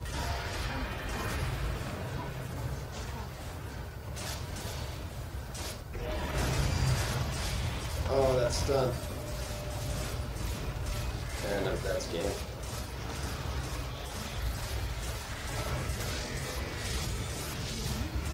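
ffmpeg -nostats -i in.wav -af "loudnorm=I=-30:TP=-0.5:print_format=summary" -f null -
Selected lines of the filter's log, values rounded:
Input Integrated:    -35.0 LUFS
Input True Peak:     -14.2 dBTP
Input LRA:             5.6 LU
Input Threshold:     -45.0 LUFS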